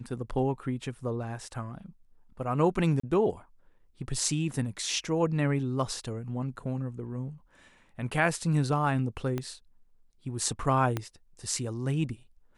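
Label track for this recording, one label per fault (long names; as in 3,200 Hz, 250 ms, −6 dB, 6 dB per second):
3.000000	3.030000	drop-out 34 ms
9.380000	9.380000	click −19 dBFS
10.970000	10.970000	click −16 dBFS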